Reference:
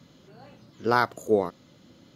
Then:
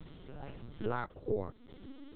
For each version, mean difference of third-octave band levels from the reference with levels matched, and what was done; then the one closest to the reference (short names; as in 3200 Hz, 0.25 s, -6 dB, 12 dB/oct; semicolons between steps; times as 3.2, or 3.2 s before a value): 8.5 dB: compressor 3:1, threshold -39 dBFS, peak gain reduction 17 dB; high-pass sweep 110 Hz -> 290 Hz, 0.58–2.13; LPC vocoder at 8 kHz pitch kept; gain +1.5 dB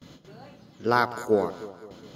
4.5 dB: gate with hold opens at -44 dBFS; reverse; upward compressor, threshold -39 dBFS; reverse; echo with dull and thin repeats by turns 0.102 s, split 940 Hz, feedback 71%, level -12 dB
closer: second